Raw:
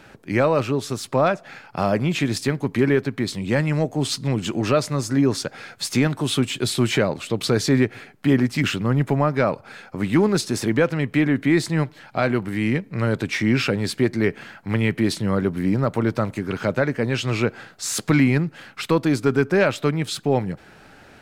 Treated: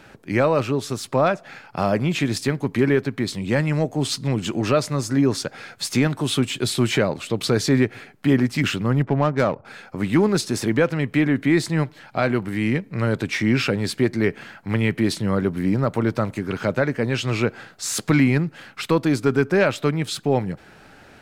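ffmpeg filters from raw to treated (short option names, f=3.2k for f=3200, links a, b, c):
-filter_complex "[0:a]asettb=1/sr,asplit=3[a][b][c];[a]atrim=end=9.024[d];[b]atrim=start=9.02:end=9.65,asetpts=PTS-STARTPTS,afade=t=in:d=0.004:c=qsin,afade=t=out:st=0.626:d=0.004:c=qsin,adynamicsmooth=sensitivity=1.5:basefreq=1.2k[e];[c]atrim=start=9.646[f];[d][e]acrossfade=d=0.004:c1=hsin:c2=qsin[g];[g][f]acrossfade=d=0.004:c1=qsin:c2=hsin"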